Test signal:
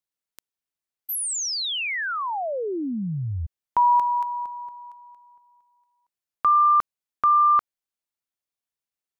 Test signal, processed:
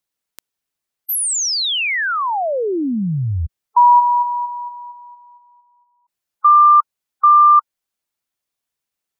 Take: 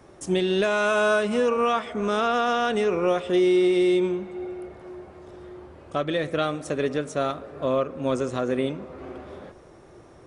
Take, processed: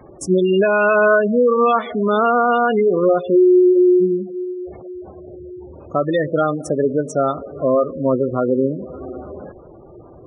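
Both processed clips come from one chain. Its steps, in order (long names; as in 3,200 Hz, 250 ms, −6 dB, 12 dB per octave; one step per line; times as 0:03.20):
gate on every frequency bin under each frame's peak −15 dB strong
level +8 dB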